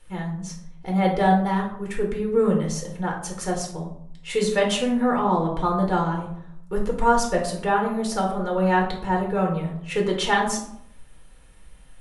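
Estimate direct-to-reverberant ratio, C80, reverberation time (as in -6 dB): -0.5 dB, 10.0 dB, 0.70 s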